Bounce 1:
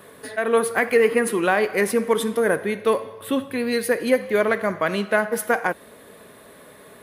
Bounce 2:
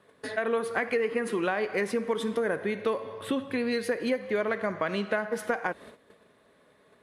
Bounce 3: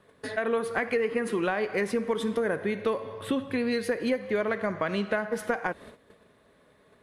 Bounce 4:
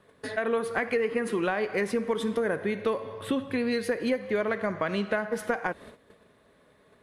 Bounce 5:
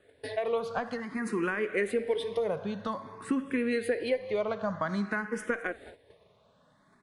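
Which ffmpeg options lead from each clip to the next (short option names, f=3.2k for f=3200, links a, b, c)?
-af "lowpass=6.4k,agate=range=-15dB:threshold=-43dB:ratio=16:detection=peak,acompressor=threshold=-26dB:ratio=4"
-af "lowshelf=f=100:g=11"
-af anull
-filter_complex "[0:a]aecho=1:1:214:0.0891,aresample=22050,aresample=44100,asplit=2[a][b];[b]afreqshift=0.52[c];[a][c]amix=inputs=2:normalize=1"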